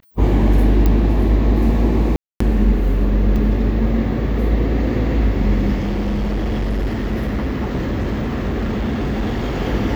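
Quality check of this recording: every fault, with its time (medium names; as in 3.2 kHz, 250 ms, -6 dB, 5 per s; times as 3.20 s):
0.86 s: pop -6 dBFS
2.16–2.40 s: dropout 244 ms
3.36 s: dropout 3.8 ms
5.80–9.58 s: clipped -16.5 dBFS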